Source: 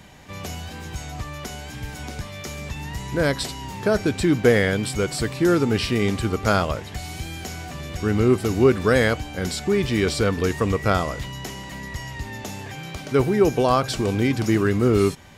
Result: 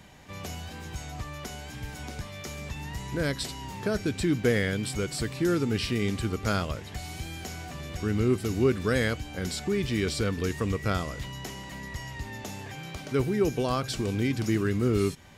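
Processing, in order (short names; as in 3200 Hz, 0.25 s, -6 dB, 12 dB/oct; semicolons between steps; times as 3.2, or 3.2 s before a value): dynamic EQ 790 Hz, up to -7 dB, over -33 dBFS, Q 0.82; gain -5 dB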